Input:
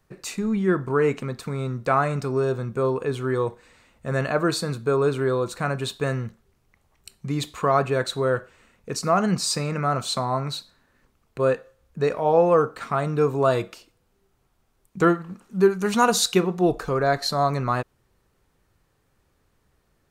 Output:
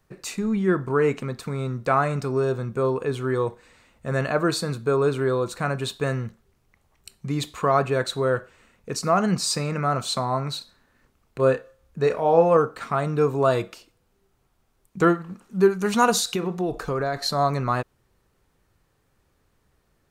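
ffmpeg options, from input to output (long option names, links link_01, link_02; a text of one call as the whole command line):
ffmpeg -i in.wav -filter_complex "[0:a]asettb=1/sr,asplit=3[link_01][link_02][link_03];[link_01]atrim=end=10.584[link_04];[link_02]atrim=start=10.58:end=12.57,asetpts=PTS-STARTPTS,afade=type=in:duration=0.004:curve=qsin,afade=type=out:start_time=1.986:duration=0.004:curve=qsin,asplit=2[link_05][link_06];[link_06]adelay=30,volume=-8.5dB[link_07];[link_05][link_07]amix=inputs=2:normalize=0,atrim=end_sample=87759[link_08];[link_03]atrim=start=12.566[link_09];[link_04][link_08]acrossfade=duration=0.004:curve1=hsin:curve2=qsin[link_10];[link_10][link_09]acrossfade=duration=0.004:curve1=qsin:curve2=hsin,asettb=1/sr,asplit=3[link_11][link_12][link_13];[link_11]atrim=end=16.194[link_14];[link_12]atrim=start=16.19:end=17.24,asetpts=PTS-STARTPTS,afade=type=in:duration=0.004:curve=qsin,afade=type=out:start_time=1.046:duration=0.004:curve=qsin,acompressor=threshold=-21dB:ratio=6:attack=3.2:release=140:knee=1:detection=peak[link_15];[link_13]atrim=start=17.236[link_16];[link_14][link_15]acrossfade=duration=0.004:curve1=hsin:curve2=qsin[link_17];[link_17][link_16]acrossfade=duration=0.004:curve1=qsin:curve2=hsin" out.wav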